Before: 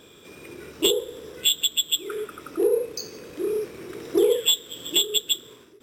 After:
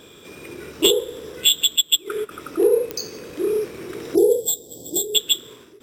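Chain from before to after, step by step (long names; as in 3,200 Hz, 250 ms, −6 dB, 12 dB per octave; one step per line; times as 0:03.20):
0:01.76–0:02.31: transient designer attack +2 dB, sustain −10 dB
0:04.15–0:05.15: elliptic band-stop filter 770–4,500 Hz, stop band 40 dB
digital clicks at 0:02.91, −16 dBFS
level +4.5 dB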